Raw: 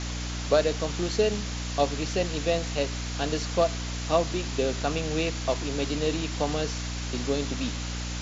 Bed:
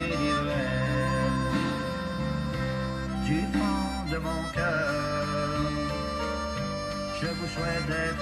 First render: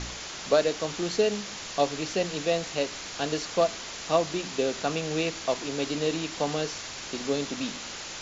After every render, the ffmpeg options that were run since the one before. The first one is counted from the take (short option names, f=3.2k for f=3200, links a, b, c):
-af "bandreject=f=60:t=h:w=4,bandreject=f=120:t=h:w=4,bandreject=f=180:t=h:w=4,bandreject=f=240:t=h:w=4,bandreject=f=300:t=h:w=4"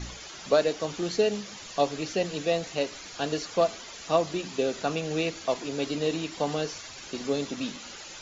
-af "afftdn=nr=10:nf=-39"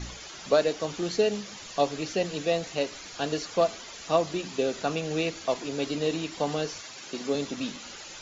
-filter_complex "[0:a]asettb=1/sr,asplit=3[a][b][c];[a]atrim=end=6.824[d];[b]atrim=start=6.82:end=7.35,asetpts=PTS-STARTPTS,afade=t=in:d=0.004:c=qsin,afade=t=out:st=0.526:d=0.004:c=qsin,highpass=150[e];[c]atrim=start=7.346[f];[d][e]acrossfade=d=0.004:c1=hsin:c2=qsin[g];[g][f]acrossfade=d=0.004:c1=qsin:c2=hsin"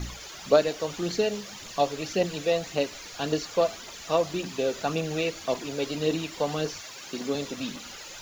-af "aphaser=in_gain=1:out_gain=1:delay=2.3:decay=0.36:speed=1.8:type=triangular,acrusher=bits=7:mix=0:aa=0.5"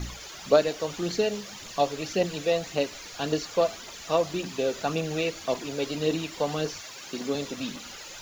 -af anull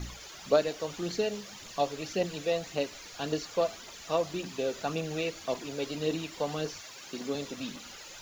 -af "volume=-4.5dB"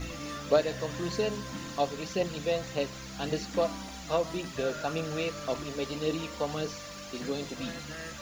-filter_complex "[1:a]volume=-13dB[a];[0:a][a]amix=inputs=2:normalize=0"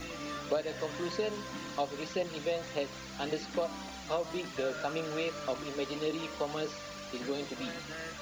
-filter_complex "[0:a]acrossover=split=230|5100[a][b][c];[a]acompressor=threshold=-52dB:ratio=4[d];[b]acompressor=threshold=-29dB:ratio=4[e];[c]acompressor=threshold=-57dB:ratio=4[f];[d][e][f]amix=inputs=3:normalize=0"